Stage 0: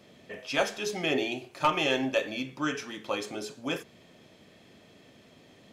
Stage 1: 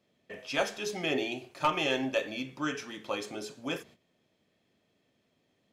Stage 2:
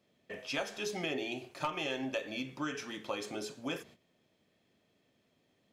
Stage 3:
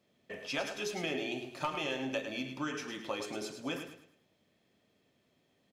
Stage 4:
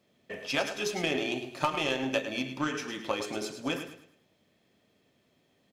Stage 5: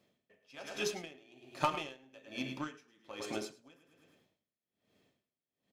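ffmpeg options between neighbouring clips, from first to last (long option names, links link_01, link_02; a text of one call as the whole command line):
ffmpeg -i in.wav -af "agate=range=-15dB:threshold=-50dB:ratio=16:detection=peak,volume=-2.5dB" out.wav
ffmpeg -i in.wav -af "acompressor=threshold=-33dB:ratio=4" out.wav
ffmpeg -i in.wav -af "aecho=1:1:106|212|318|424:0.376|0.128|0.0434|0.0148" out.wav
ffmpeg -i in.wav -af "aeval=exprs='0.112*(cos(1*acos(clip(val(0)/0.112,-1,1)))-cos(1*PI/2))+0.00891*(cos(3*acos(clip(val(0)/0.112,-1,1)))-cos(3*PI/2))+0.00355*(cos(7*acos(clip(val(0)/0.112,-1,1)))-cos(7*PI/2))':channel_layout=same,volume=9dB" out.wav
ffmpeg -i in.wav -af "aeval=exprs='val(0)*pow(10,-28*(0.5-0.5*cos(2*PI*1.2*n/s))/20)':channel_layout=same,volume=-2.5dB" out.wav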